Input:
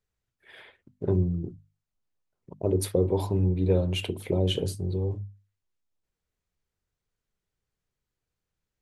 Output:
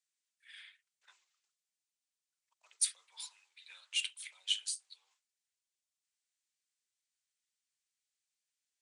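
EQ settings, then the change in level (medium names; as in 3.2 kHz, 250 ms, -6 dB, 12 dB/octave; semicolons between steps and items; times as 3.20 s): Bessel high-pass 2.5 kHz, order 6; steep low-pass 9.7 kHz 96 dB/octave; treble shelf 7.3 kHz +10.5 dB; 0.0 dB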